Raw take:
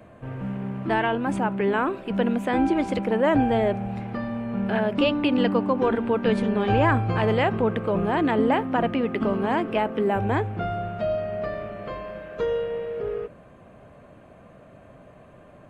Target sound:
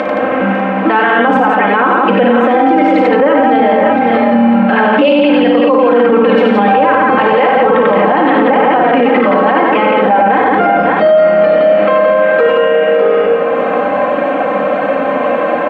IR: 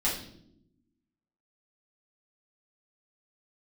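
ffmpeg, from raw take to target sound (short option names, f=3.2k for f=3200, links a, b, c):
-filter_complex "[0:a]aecho=1:1:3.8:0.97,acompressor=mode=upward:threshold=-25dB:ratio=2.5,highpass=390,lowpass=2.4k,aecho=1:1:55|93|171|552|597:0.398|0.668|0.631|0.251|0.266,asplit=2[a][b];[1:a]atrim=start_sample=2205[c];[b][c]afir=irnorm=-1:irlink=0,volume=-15dB[d];[a][d]amix=inputs=2:normalize=0,alimiter=level_in=21.5dB:limit=-1dB:release=50:level=0:latency=1,volume=-1dB"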